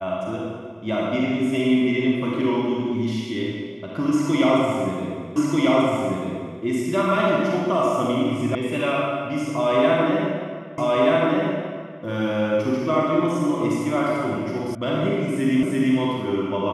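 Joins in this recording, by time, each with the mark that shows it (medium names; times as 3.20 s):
5.36 s: repeat of the last 1.24 s
8.55 s: sound stops dead
10.78 s: repeat of the last 1.23 s
14.75 s: sound stops dead
15.63 s: repeat of the last 0.34 s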